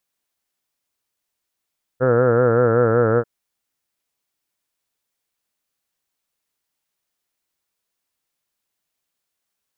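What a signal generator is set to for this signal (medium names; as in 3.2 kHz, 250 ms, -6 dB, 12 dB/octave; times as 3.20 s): formant-synthesis vowel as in heard, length 1.24 s, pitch 124 Hz, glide -1.5 st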